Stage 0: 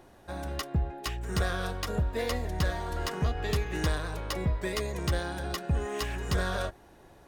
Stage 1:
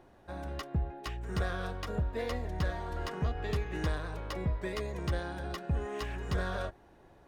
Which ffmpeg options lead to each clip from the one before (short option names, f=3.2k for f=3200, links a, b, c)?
-af "highshelf=f=4.6k:g=-11,volume=-3.5dB"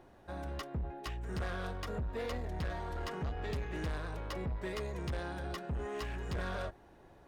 -af "asoftclip=type=tanh:threshold=-32.5dB"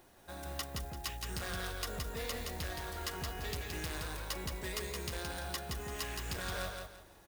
-af "acrusher=bits=8:mode=log:mix=0:aa=0.000001,crystalizer=i=6.5:c=0,aecho=1:1:170|340|510|680:0.631|0.183|0.0531|0.0154,volume=-5.5dB"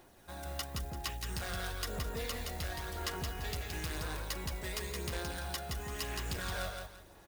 -af "aphaser=in_gain=1:out_gain=1:delay=1.5:decay=0.26:speed=0.97:type=sinusoidal"